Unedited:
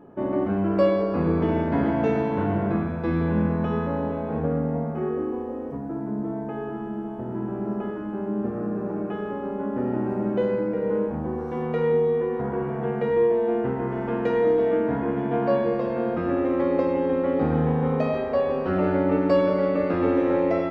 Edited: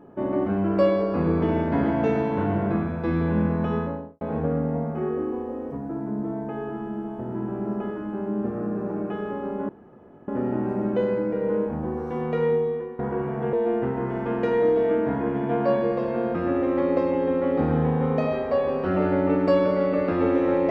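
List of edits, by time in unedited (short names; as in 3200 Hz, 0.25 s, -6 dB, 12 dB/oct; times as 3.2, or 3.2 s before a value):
3.74–4.21 studio fade out
9.69 insert room tone 0.59 s
11.87–12.4 fade out, to -13.5 dB
12.94–13.35 cut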